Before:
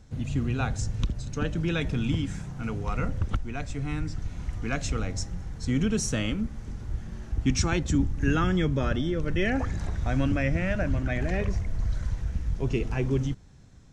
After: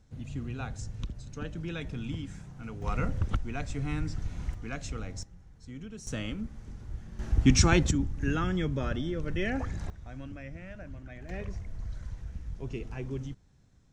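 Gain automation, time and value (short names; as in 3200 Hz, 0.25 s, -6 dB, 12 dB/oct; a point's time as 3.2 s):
-9 dB
from 2.82 s -1.5 dB
from 4.54 s -8 dB
from 5.23 s -17.5 dB
from 6.07 s -7 dB
from 7.19 s +3.5 dB
from 7.91 s -5 dB
from 9.9 s -17 dB
from 11.29 s -10 dB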